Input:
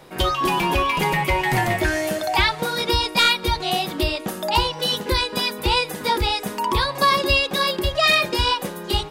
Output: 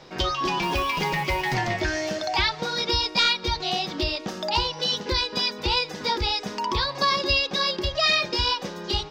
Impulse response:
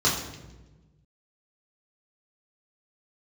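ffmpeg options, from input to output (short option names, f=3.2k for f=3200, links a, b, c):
-filter_complex "[0:a]highshelf=f=7.7k:t=q:w=3:g=-13.5,asplit=2[a][b];[b]acompressor=threshold=-28dB:ratio=6,volume=-0.5dB[c];[a][c]amix=inputs=2:normalize=0,asettb=1/sr,asplit=3[d][e][f];[d]atrim=end=0.624[g];[e]atrim=start=0.62:end=1.54,asetpts=PTS-STARTPTS,afade=t=in:d=0.004:c=qsin,afade=t=out:st=0.916:d=0.004:c=qsin,acrusher=bits=5:mode=log:mix=0:aa=0.000001[h];[f]atrim=start=1.536[i];[g][h]acrossfade=d=0.004:c1=hsin:c2=qsin[j];[j][i]acrossfade=d=0.004:c1=qsin:c2=hsin,volume=-7.5dB"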